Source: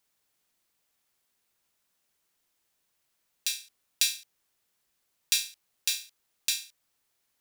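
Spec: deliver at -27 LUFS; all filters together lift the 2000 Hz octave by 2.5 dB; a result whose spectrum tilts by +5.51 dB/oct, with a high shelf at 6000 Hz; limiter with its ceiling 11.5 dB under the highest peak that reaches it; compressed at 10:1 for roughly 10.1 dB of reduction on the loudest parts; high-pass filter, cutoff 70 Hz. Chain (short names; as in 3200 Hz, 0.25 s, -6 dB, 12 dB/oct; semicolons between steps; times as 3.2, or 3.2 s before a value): HPF 70 Hz; bell 2000 Hz +3 dB; high shelf 6000 Hz +3 dB; compressor 10:1, threshold -28 dBFS; gain +13 dB; limiter -2.5 dBFS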